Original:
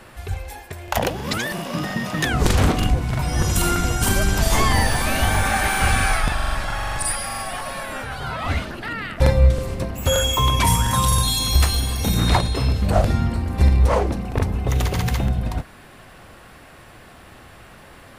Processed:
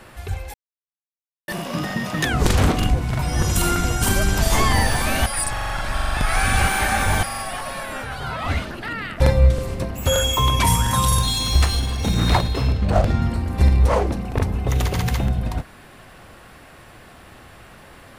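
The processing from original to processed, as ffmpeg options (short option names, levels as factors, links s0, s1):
-filter_complex "[0:a]asettb=1/sr,asplit=3[s0][s1][s2];[s0]atrim=end=11.194[s3];[s1]atrim=start=11.19:end=13.22,asetpts=PTS-STARTPTS,afade=t=in:d=0.004:c=qsin,afade=t=out:st=2.026:d=0.004:c=qsin,adynamicsmooth=sensitivity=6.5:basefreq=2900[s4];[s2]atrim=start=13.216[s5];[s3][s4]acrossfade=d=0.004:c1=hsin:c2=qsin[s6];[s6][s5]acrossfade=d=0.004:c1=qsin:c2=hsin,asplit=5[s7][s8][s9][s10][s11];[s7]atrim=end=0.54,asetpts=PTS-STARTPTS,afade=t=out:st=0.536:d=0.004:c=hsin[s12];[s8]atrim=start=0.54:end=1.48,asetpts=PTS-STARTPTS,volume=0[s13];[s9]atrim=start=1.48:end=5.262,asetpts=PTS-STARTPTS,afade=t=in:d=0.004:c=hsin[s14];[s10]atrim=start=5.258:end=7.232,asetpts=PTS-STARTPTS,areverse[s15];[s11]atrim=start=7.228[s16];[s12][s13][s14]concat=n=3:v=0:a=1[s17];[s17][s15]acrossfade=d=0.004:c1=hsin:c2=hsin[s18];[s18][s16]acrossfade=d=0.004:c1=hsin:c2=hsin"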